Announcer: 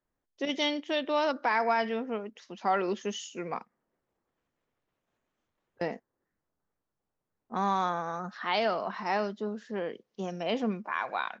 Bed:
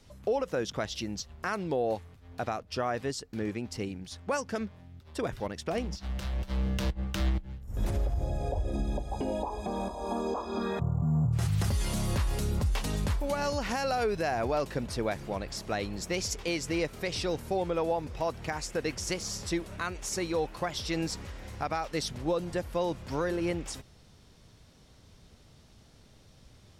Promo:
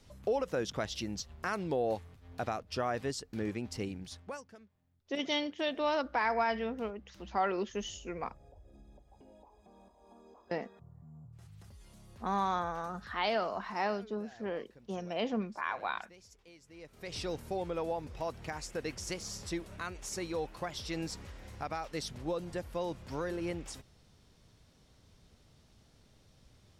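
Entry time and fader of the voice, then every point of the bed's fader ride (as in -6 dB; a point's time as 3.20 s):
4.70 s, -3.5 dB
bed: 4.09 s -2.5 dB
4.67 s -26 dB
16.69 s -26 dB
17.17 s -6 dB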